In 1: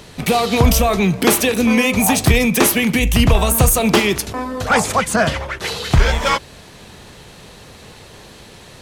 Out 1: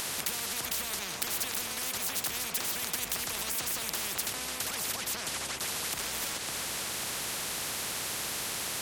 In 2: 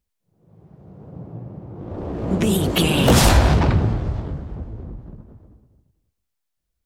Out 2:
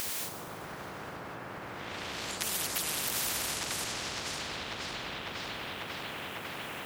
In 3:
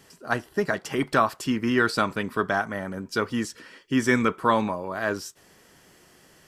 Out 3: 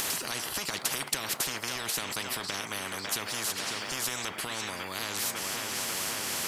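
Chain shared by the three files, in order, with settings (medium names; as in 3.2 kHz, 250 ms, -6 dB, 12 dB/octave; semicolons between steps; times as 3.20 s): high-pass 160 Hz 12 dB/octave; compression, threshold -20 dBFS; tape echo 548 ms, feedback 65%, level -15 dB, low-pass 4 kHz; peak limiter -17 dBFS; upward compressor, threshold -28 dBFS; spectrum-flattening compressor 10:1; trim +5 dB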